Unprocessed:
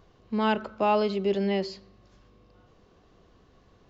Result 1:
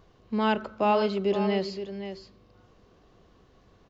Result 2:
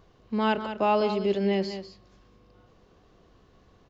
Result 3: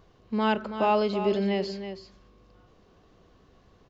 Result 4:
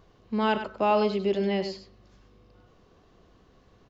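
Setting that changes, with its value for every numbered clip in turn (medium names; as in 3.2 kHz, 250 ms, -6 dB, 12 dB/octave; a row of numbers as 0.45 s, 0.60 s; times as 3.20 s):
delay, time: 519 ms, 197 ms, 326 ms, 99 ms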